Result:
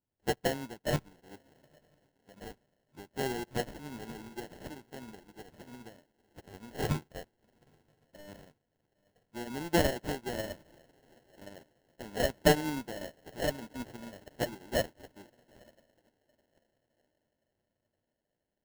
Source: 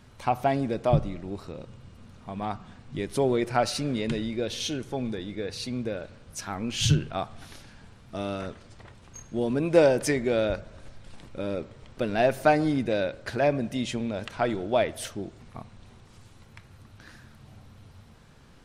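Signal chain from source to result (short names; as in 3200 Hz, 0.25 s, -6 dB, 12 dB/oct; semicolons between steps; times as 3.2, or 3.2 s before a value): one-sided clip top -24 dBFS, bottom -10.5 dBFS; low shelf 180 Hz -8.5 dB; diffused feedback echo 0.908 s, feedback 58%, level -12 dB; dynamic EQ 520 Hz, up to -6 dB, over -42 dBFS, Q 3.1; sample-rate reducer 1200 Hz, jitter 0%; upward expander 2.5:1, over -46 dBFS; gain +4 dB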